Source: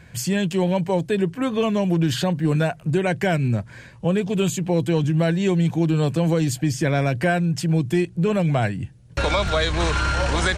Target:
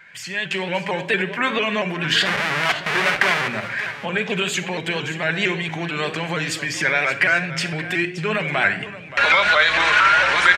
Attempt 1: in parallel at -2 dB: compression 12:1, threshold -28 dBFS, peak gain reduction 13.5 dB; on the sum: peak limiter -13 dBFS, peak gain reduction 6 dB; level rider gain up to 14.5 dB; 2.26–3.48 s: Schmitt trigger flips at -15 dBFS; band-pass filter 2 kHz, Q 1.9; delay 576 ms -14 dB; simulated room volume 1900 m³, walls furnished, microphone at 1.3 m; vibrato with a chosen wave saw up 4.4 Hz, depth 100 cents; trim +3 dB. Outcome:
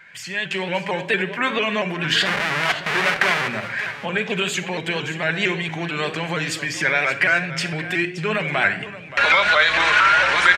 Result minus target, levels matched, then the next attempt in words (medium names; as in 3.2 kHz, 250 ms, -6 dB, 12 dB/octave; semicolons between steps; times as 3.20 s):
compression: peak gain reduction +5.5 dB
in parallel at -2 dB: compression 12:1, threshold -22 dBFS, peak gain reduction 8 dB; on the sum: peak limiter -13 dBFS, peak gain reduction 7 dB; level rider gain up to 14.5 dB; 2.26–3.48 s: Schmitt trigger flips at -15 dBFS; band-pass filter 2 kHz, Q 1.9; delay 576 ms -14 dB; simulated room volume 1900 m³, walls furnished, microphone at 1.3 m; vibrato with a chosen wave saw up 4.4 Hz, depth 100 cents; trim +3 dB